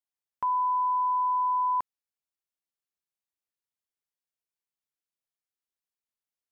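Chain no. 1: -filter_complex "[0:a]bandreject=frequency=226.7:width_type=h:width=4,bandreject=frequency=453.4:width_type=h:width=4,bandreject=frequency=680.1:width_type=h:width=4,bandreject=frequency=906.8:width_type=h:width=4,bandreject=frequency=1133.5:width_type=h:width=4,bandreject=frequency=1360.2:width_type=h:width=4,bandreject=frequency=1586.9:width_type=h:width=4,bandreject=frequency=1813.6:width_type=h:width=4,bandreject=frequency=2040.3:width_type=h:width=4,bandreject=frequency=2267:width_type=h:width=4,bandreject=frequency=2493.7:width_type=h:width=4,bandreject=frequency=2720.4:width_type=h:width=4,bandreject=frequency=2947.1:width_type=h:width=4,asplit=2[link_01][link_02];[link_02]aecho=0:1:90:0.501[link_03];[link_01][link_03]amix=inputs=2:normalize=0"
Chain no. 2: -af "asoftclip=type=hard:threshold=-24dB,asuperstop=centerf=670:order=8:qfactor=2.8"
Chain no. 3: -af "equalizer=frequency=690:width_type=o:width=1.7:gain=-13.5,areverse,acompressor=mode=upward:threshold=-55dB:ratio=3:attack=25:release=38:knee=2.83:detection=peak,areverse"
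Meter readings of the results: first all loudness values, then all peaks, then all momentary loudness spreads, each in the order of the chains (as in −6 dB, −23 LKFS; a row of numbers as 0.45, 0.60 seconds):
−23.0, −27.0, −36.0 LKFS; −19.0, −22.0, −29.0 dBFS; 7, 6, 6 LU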